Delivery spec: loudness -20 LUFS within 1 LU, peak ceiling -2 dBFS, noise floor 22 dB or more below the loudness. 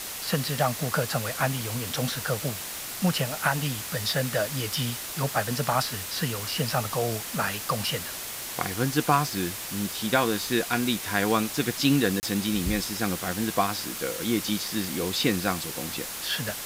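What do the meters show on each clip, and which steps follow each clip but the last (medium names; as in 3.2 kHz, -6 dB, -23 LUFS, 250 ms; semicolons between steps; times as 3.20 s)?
dropouts 1; longest dropout 29 ms; noise floor -36 dBFS; noise floor target -49 dBFS; loudness -27.0 LUFS; peak level -7.0 dBFS; loudness target -20.0 LUFS
-> interpolate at 12.20 s, 29 ms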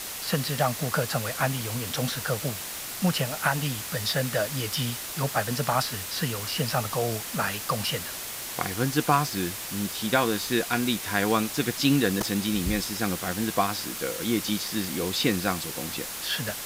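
dropouts 0; noise floor -36 dBFS; noise floor target -49 dBFS
-> noise reduction 13 dB, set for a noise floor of -36 dBFS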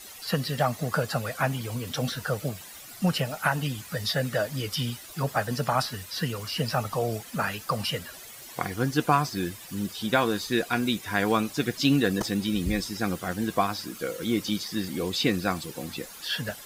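noise floor -45 dBFS; noise floor target -50 dBFS
-> noise reduction 6 dB, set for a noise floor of -45 dBFS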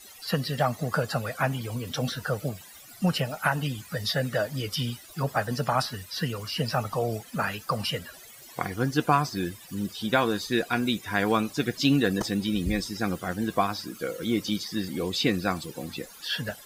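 noise floor -48 dBFS; noise floor target -51 dBFS
-> noise reduction 6 dB, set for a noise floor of -48 dBFS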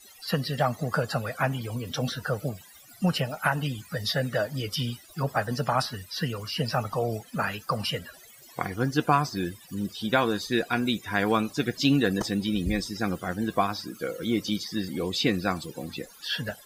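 noise floor -51 dBFS; loudness -28.5 LUFS; peak level -7.0 dBFS; loudness target -20.0 LUFS
-> trim +8.5 dB; peak limiter -2 dBFS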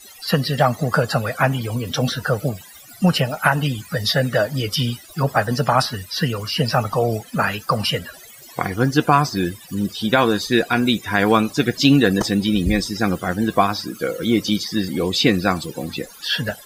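loudness -20.0 LUFS; peak level -2.0 dBFS; noise floor -43 dBFS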